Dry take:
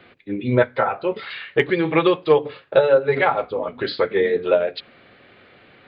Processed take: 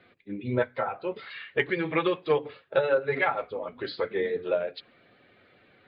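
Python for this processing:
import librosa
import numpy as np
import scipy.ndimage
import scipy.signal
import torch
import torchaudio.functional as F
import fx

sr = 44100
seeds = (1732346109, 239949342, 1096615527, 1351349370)

y = fx.spec_quant(x, sr, step_db=15)
y = fx.dynamic_eq(y, sr, hz=2000.0, q=1.2, threshold_db=-36.0, ratio=4.0, max_db=5, at=(1.33, 3.7))
y = y * 10.0 ** (-9.0 / 20.0)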